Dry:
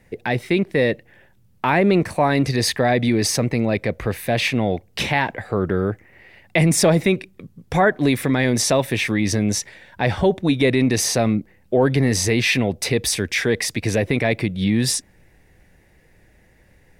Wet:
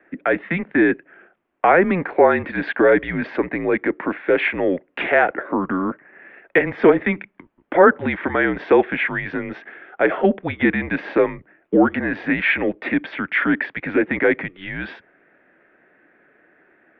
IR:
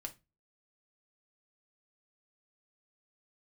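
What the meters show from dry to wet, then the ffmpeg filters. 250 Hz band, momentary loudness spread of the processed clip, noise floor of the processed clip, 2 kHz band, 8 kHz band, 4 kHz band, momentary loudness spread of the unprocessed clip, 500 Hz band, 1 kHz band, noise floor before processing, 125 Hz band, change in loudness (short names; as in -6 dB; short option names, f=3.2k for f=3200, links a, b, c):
-1.0 dB, 12 LU, -61 dBFS, +3.5 dB, under -40 dB, -13.0 dB, 7 LU, +2.0 dB, +2.5 dB, -56 dBFS, -11.5 dB, 0.0 dB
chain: -filter_complex "[0:a]highpass=f=260:t=q:w=0.5412,highpass=f=260:t=q:w=1.307,lowpass=f=3.3k:t=q:w=0.5176,lowpass=f=3.3k:t=q:w=0.7071,lowpass=f=3.3k:t=q:w=1.932,afreqshift=-180,acrossover=split=250 2300:gain=0.0794 1 0.1[a][b][c];[a][b][c]amix=inputs=3:normalize=0,volume=6.5dB"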